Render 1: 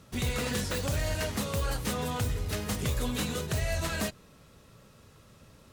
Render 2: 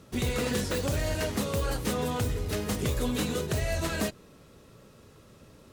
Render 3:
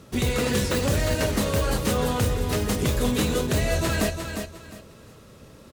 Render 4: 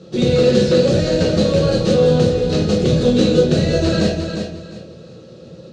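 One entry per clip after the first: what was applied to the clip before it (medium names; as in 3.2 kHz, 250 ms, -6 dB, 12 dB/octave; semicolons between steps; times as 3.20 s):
peaking EQ 360 Hz +6.5 dB 1.3 oct
feedback delay 355 ms, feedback 26%, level -7 dB; trim +5 dB
cabinet simulation 100–6300 Hz, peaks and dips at 170 Hz +9 dB, 360 Hz +5 dB, 530 Hz +9 dB, 1 kHz -9 dB, 2.1 kHz -8 dB, 4.1 kHz +7 dB; reverberation RT60 0.45 s, pre-delay 6 ms, DRR -1.5 dB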